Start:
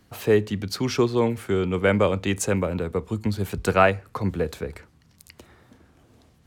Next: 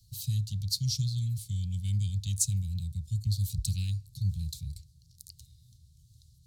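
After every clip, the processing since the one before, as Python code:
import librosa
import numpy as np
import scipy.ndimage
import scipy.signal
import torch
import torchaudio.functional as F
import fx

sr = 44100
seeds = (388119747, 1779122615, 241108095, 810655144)

y = scipy.signal.sosfilt(scipy.signal.cheby1(4, 1.0, [140.0, 4000.0], 'bandstop', fs=sr, output='sos'), x)
y = F.gain(torch.from_numpy(y), 1.5).numpy()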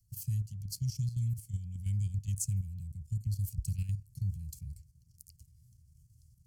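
y = fx.level_steps(x, sr, step_db=10)
y = fx.fixed_phaser(y, sr, hz=1600.0, stages=4)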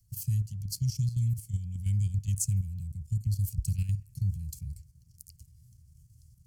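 y = fx.echo_wet_bandpass(x, sr, ms=67, feedback_pct=61, hz=930.0, wet_db=-17.0)
y = F.gain(torch.from_numpy(y), 4.5).numpy()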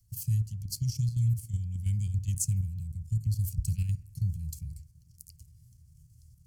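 y = fx.rev_fdn(x, sr, rt60_s=0.33, lf_ratio=1.5, hf_ratio=0.4, size_ms=20.0, drr_db=13.5)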